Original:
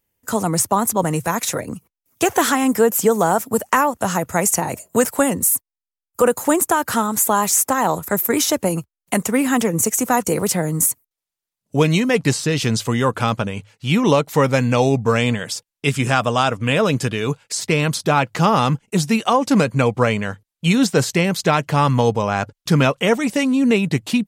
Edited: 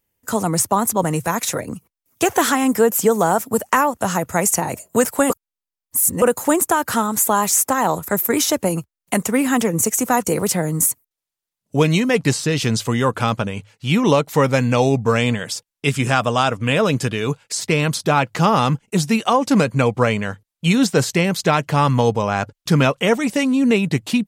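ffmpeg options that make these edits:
ffmpeg -i in.wav -filter_complex "[0:a]asplit=3[link_01][link_02][link_03];[link_01]atrim=end=5.302[link_04];[link_02]atrim=start=5.298:end=6.222,asetpts=PTS-STARTPTS,areverse[link_05];[link_03]atrim=start=6.218[link_06];[link_04][link_05]acrossfade=duration=0.004:curve1=hsin:curve2=hsin[link_07];[link_07][link_06]acrossfade=duration=0.004:curve1=hsin:curve2=hsin" out.wav

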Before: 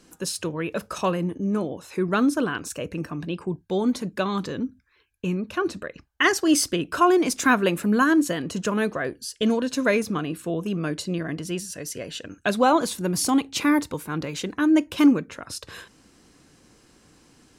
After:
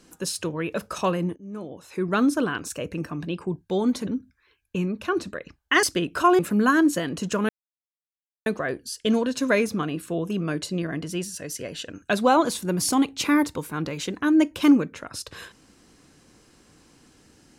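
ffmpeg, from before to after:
ffmpeg -i in.wav -filter_complex "[0:a]asplit=6[link_01][link_02][link_03][link_04][link_05][link_06];[link_01]atrim=end=1.36,asetpts=PTS-STARTPTS,afade=type=out:start_time=1.356:duration=0.004:curve=hsin:silence=0.0841395[link_07];[link_02]atrim=start=1.36:end=4.072,asetpts=PTS-STARTPTS,afade=type=in:duration=0.85:silence=0.0841395[link_08];[link_03]atrim=start=4.558:end=6.322[link_09];[link_04]atrim=start=6.598:end=7.162[link_10];[link_05]atrim=start=7.718:end=8.82,asetpts=PTS-STARTPTS,afade=type=out:start_time=1.098:duration=0.004:curve=hsin,apad=pad_dur=0.97[link_11];[link_06]atrim=start=8.82,asetpts=PTS-STARTPTS,afade=type=in:duration=0.004:curve=hsin[link_12];[link_07][link_08]concat=n=2:v=0:a=1[link_13];[link_13][link_09]acrossfade=duration=0.004:curve1=hsin:curve2=hsin[link_14];[link_14][link_10]acrossfade=duration=0.004:curve1=hsin:curve2=hsin[link_15];[link_11][link_12]concat=n=2:v=0:a=1[link_16];[link_15][link_16]acrossfade=duration=0.004:curve1=hsin:curve2=hsin" out.wav

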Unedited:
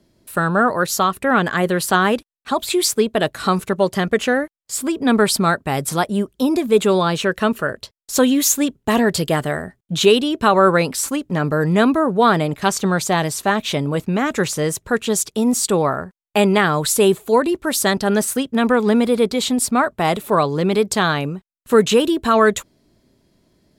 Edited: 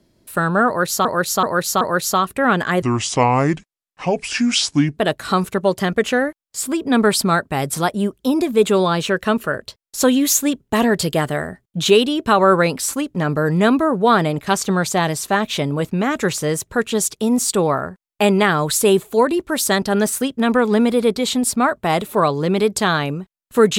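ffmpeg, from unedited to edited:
ffmpeg -i in.wav -filter_complex "[0:a]asplit=6[link_01][link_02][link_03][link_04][link_05][link_06];[link_01]atrim=end=1.052[link_07];[link_02]atrim=start=0.668:end=1.052[link_08];[link_03]atrim=start=0.668:end=1.052[link_09];[link_04]atrim=start=0.668:end=1.684[link_10];[link_05]atrim=start=1.68:end=3.12,asetpts=PTS-STARTPTS,asetrate=29547,aresample=44100,atrim=end_sample=94782,asetpts=PTS-STARTPTS[link_11];[link_06]atrim=start=3.116[link_12];[link_07][link_08]acrossfade=duration=0.004:curve1=hsin:curve2=hsin[link_13];[link_13][link_09]acrossfade=duration=0.004:curve1=hsin:curve2=hsin[link_14];[link_14][link_10]acrossfade=duration=0.004:curve1=hsin:curve2=hsin[link_15];[link_15][link_11]acrossfade=duration=0.004:curve1=hsin:curve2=hsin[link_16];[link_16][link_12]acrossfade=duration=0.004:curve1=hsin:curve2=hsin" out.wav

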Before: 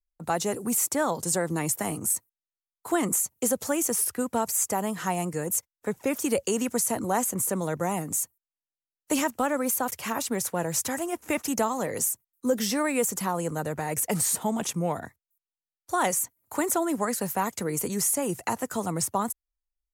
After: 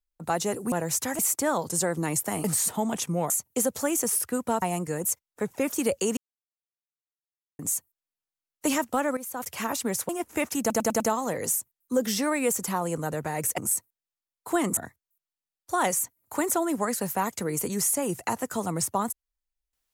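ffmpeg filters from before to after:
ffmpeg -i in.wav -filter_complex "[0:a]asplit=16[link_01][link_02][link_03][link_04][link_05][link_06][link_07][link_08][link_09][link_10][link_11][link_12][link_13][link_14][link_15][link_16];[link_01]atrim=end=0.722[link_17];[link_02]atrim=start=10.548:end=11.022[link_18];[link_03]atrim=start=0.718:end=1.972[link_19];[link_04]atrim=start=14.108:end=14.972[link_20];[link_05]atrim=start=3.158:end=4.482[link_21];[link_06]atrim=start=5.078:end=6.63,asetpts=PTS-STARTPTS,afade=type=out:start_time=1.548:duration=0.004:curve=hsin[link_22];[link_07]atrim=start=6.63:end=8.05,asetpts=PTS-STARTPTS,volume=0[link_23];[link_08]atrim=start=8.05:end=9.63,asetpts=PTS-STARTPTS,afade=type=in:duration=0.004:curve=hsin,afade=type=out:start_time=1.576:duration=0.004:curve=hsin:silence=0.223872[link_24];[link_09]atrim=start=9.63:end=10.552,asetpts=PTS-STARTPTS,afade=type=in:duration=0.34:curve=qua:silence=0.223872[link_25];[link_10]atrim=start=11.018:end=11.632[link_26];[link_11]atrim=start=11.528:end=11.632[link_27];[link_12]atrim=start=11.528:end=11.632[link_28];[link_13]atrim=start=11.528:end=11.632[link_29];[link_14]atrim=start=11.528:end=14.112[link_30];[link_15]atrim=start=1.968:end=3.162[link_31];[link_16]atrim=start=14.968[link_32];[link_17][link_18]acrossfade=duration=0.004:curve1=hsin:curve2=hsin[link_33];[link_33][link_19]acrossfade=duration=0.004:curve1=hsin:curve2=hsin[link_34];[link_34][link_20]acrossfade=duration=0.004:curve1=hsin:curve2=hsin[link_35];[link_35][link_21]acrossfade=duration=0.004:curve1=hsin:curve2=hsin[link_36];[link_22][link_23][link_24][link_25]concat=n=4:v=0:a=1[link_37];[link_36][link_37]acrossfade=duration=0.004:curve1=hsin:curve2=hsin[link_38];[link_38][link_26]acrossfade=duration=0.004:curve1=hsin:curve2=hsin[link_39];[link_39][link_27]acrossfade=duration=0.004:curve1=hsin:curve2=hsin[link_40];[link_40][link_28]acrossfade=duration=0.004:curve1=hsin:curve2=hsin[link_41];[link_41][link_29]acrossfade=duration=0.004:curve1=hsin:curve2=hsin[link_42];[link_42][link_30]acrossfade=duration=0.004:curve1=hsin:curve2=hsin[link_43];[link_43][link_31]acrossfade=duration=0.004:curve1=hsin:curve2=hsin[link_44];[link_44][link_32]acrossfade=duration=0.004:curve1=hsin:curve2=hsin" out.wav

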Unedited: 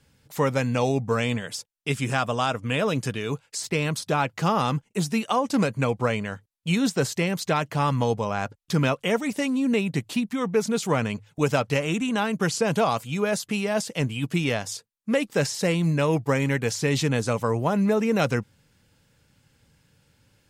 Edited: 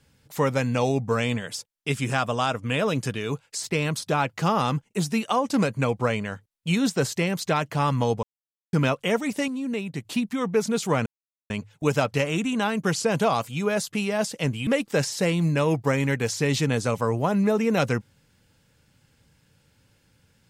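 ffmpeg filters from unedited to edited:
ffmpeg -i in.wav -filter_complex "[0:a]asplit=7[link_01][link_02][link_03][link_04][link_05][link_06][link_07];[link_01]atrim=end=8.23,asetpts=PTS-STARTPTS,afade=type=out:start_time=8.226:duration=0.004:curve=hsin[link_08];[link_02]atrim=start=8.23:end=8.73,asetpts=PTS-STARTPTS,volume=0[link_09];[link_03]atrim=start=8.73:end=9.482,asetpts=PTS-STARTPTS,afade=type=in:duration=0.004:curve=hsin[link_10];[link_04]atrim=start=9.478:end=10.052,asetpts=PTS-STARTPTS,volume=-6dB[link_11];[link_05]atrim=start=10.048:end=11.06,asetpts=PTS-STARTPTS,afade=type=out:start_time=1.008:duration=0.004:curve=hsin,apad=pad_dur=0.44[link_12];[link_06]atrim=start=11.06:end=14.232,asetpts=PTS-STARTPTS,afade=type=in:duration=0.004:curve=hsin[link_13];[link_07]atrim=start=15.088[link_14];[link_08][link_09][link_10]concat=n=3:v=0:a=1[link_15];[link_15][link_11]acrossfade=duration=0.004:curve1=hsin:curve2=hsin[link_16];[link_12][link_13]concat=n=2:v=0:a=1[link_17];[link_16][link_17]acrossfade=duration=0.004:curve1=hsin:curve2=hsin[link_18];[link_18][link_14]acrossfade=duration=0.004:curve1=hsin:curve2=hsin" out.wav

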